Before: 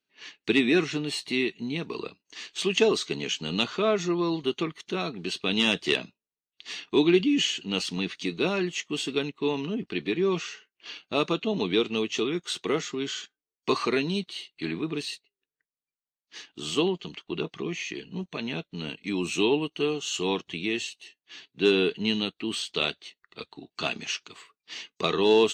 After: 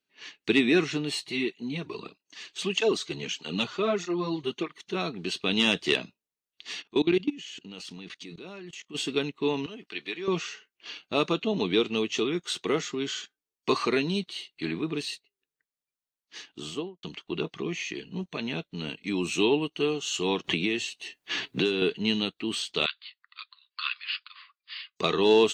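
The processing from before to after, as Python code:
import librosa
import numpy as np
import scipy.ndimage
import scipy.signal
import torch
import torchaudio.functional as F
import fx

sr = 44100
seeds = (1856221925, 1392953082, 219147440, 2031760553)

y = fx.flanger_cancel(x, sr, hz=1.6, depth_ms=4.8, at=(1.21, 4.94), fade=0.02)
y = fx.level_steps(y, sr, step_db=21, at=(6.81, 8.94), fade=0.02)
y = fx.highpass(y, sr, hz=1300.0, slope=6, at=(9.66, 10.28))
y = fx.studio_fade_out(y, sr, start_s=16.51, length_s=0.52)
y = fx.band_squash(y, sr, depth_pct=100, at=(20.44, 21.82))
y = fx.brickwall_bandpass(y, sr, low_hz=1000.0, high_hz=5200.0, at=(22.86, 24.96))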